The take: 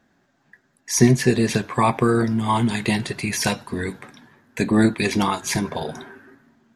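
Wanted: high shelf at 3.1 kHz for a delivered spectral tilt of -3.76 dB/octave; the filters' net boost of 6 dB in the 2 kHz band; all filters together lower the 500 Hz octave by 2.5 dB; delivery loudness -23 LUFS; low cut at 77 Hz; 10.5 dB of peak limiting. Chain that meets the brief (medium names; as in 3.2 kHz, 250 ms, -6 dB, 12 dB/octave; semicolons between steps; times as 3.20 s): high-pass 77 Hz; peaking EQ 500 Hz -4 dB; peaking EQ 2 kHz +6 dB; treble shelf 3.1 kHz +4.5 dB; peak limiter -12 dBFS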